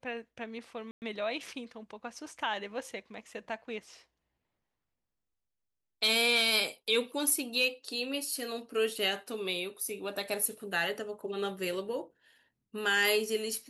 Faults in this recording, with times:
0.91–1.02 s: dropout 109 ms

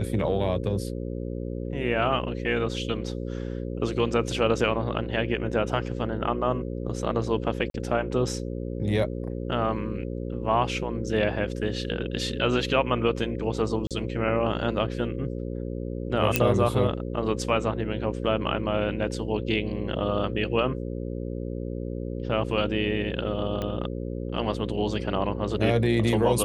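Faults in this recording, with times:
buzz 60 Hz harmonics 9 -32 dBFS
7.70–7.74 s: dropout 42 ms
13.87–13.91 s: dropout 37 ms
16.36 s: pop -4 dBFS
23.62 s: pop -17 dBFS

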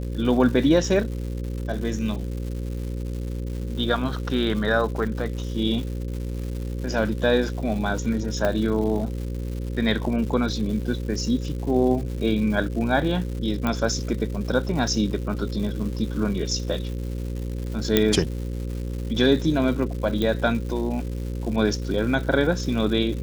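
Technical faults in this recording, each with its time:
buzz 60 Hz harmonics 9 -29 dBFS
crackle 300 per s -33 dBFS
8.45 s: pop -11 dBFS
13.67 s: pop -12 dBFS
17.97 s: pop -3 dBFS
20.22 s: pop -13 dBFS

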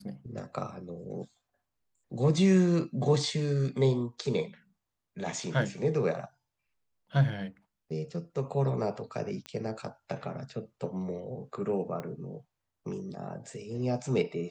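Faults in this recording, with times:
9.46 s: pop -25 dBFS
12.00 s: pop -24 dBFS

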